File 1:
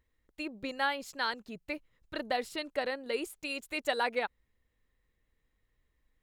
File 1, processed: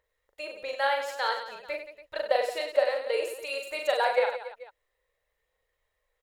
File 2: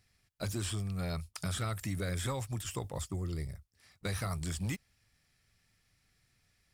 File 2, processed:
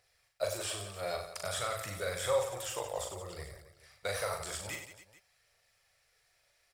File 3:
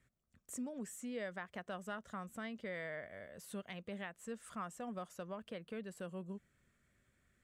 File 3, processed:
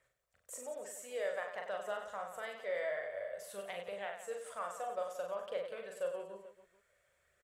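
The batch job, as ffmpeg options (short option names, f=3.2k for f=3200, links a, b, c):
-af "lowshelf=f=370:t=q:w=3:g=-13,aphaser=in_gain=1:out_gain=1:delay=3.5:decay=0.3:speed=0.54:type=triangular,aecho=1:1:40|96|174.4|284.2|437.8:0.631|0.398|0.251|0.158|0.1"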